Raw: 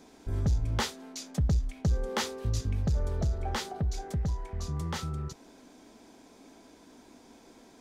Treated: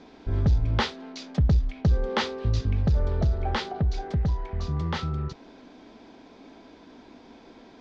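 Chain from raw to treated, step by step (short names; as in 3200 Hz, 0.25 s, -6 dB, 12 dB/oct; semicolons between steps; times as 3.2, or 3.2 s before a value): LPF 4500 Hz 24 dB/oct; gain +5.5 dB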